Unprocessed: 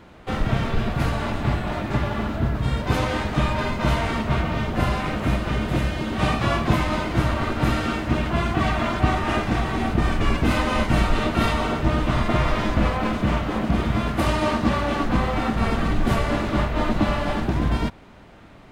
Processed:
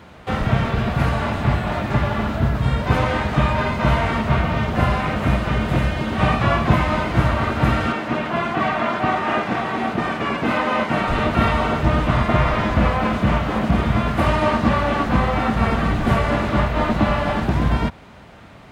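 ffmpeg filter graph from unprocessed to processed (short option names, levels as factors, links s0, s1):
-filter_complex "[0:a]asettb=1/sr,asplit=3[s0][s1][s2];[s0]atrim=end=7.924[s3];[s1]atrim=start=7.92:end=11.08,asetpts=PTS-STARTPTS,afade=t=in:d=0.004:c=qsin,afade=t=out:st=3.156:d=0.004:c=qsin,highpass=220,highshelf=f=5400:g=-8.5[s4];[s2]atrim=start=11.076[s5];[s3][s4]acrossfade=d=0.004:c1=hsin:c2=qsin[s6];[s6][s5]acrossfade=d=0.004:c1=qsin:c2=hsin,acrossover=split=2900[s7][s8];[s8]acompressor=threshold=0.00562:ratio=4:attack=1:release=60[s9];[s7][s9]amix=inputs=2:normalize=0,highpass=53,equalizer=f=320:w=1.9:g=-5,volume=1.78"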